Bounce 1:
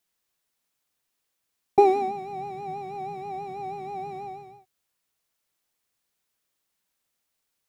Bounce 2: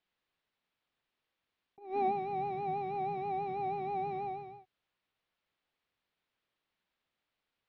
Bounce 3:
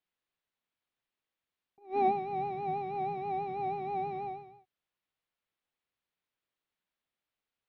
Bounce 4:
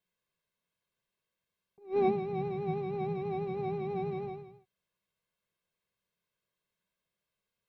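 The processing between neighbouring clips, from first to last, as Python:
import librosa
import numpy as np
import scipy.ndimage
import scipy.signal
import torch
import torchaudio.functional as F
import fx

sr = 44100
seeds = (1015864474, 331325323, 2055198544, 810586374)

y1 = scipy.signal.sosfilt(scipy.signal.butter(4, 3800.0, 'lowpass', fs=sr, output='sos'), x)
y1 = fx.over_compress(y1, sr, threshold_db=-27.0, ratio=-0.5)
y1 = F.gain(torch.from_numpy(y1), -4.5).numpy()
y2 = fx.upward_expand(y1, sr, threshold_db=-49.0, expansion=1.5)
y2 = F.gain(torch.from_numpy(y2), 4.5).numpy()
y3 = fx.peak_eq(y2, sr, hz=200.0, db=12.5, octaves=1.1)
y3 = y3 + 0.73 * np.pad(y3, (int(1.9 * sr / 1000.0), 0))[:len(y3)]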